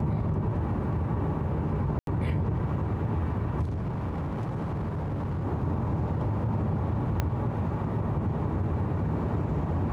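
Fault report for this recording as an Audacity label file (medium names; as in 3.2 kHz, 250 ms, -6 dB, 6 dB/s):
1.990000	2.070000	dropout 82 ms
3.630000	5.450000	clipped -27.5 dBFS
7.200000	7.200000	pop -13 dBFS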